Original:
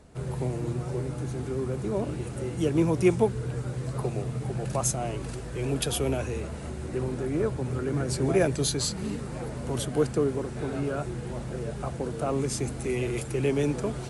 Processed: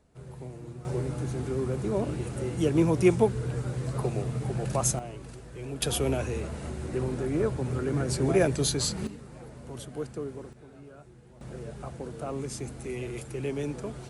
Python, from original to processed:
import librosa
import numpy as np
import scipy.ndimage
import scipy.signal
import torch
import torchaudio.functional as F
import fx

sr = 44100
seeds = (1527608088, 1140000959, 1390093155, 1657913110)

y = fx.gain(x, sr, db=fx.steps((0.0, -11.5), (0.85, 0.5), (4.99, -8.5), (5.82, 0.0), (9.07, -10.5), (10.53, -19.0), (11.41, -6.5)))